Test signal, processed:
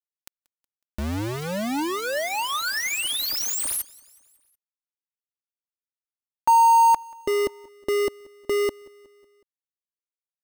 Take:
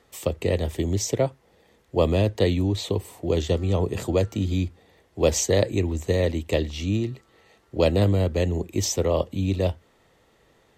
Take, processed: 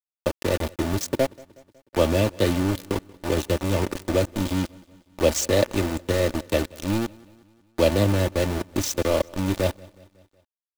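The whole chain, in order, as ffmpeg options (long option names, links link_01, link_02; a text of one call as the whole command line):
ffmpeg -i in.wav -af "aeval=exprs='val(0)*gte(abs(val(0)),0.0668)':channel_layout=same,aecho=1:1:3.4:0.41,aecho=1:1:184|368|552|736:0.0631|0.0353|0.0198|0.0111" out.wav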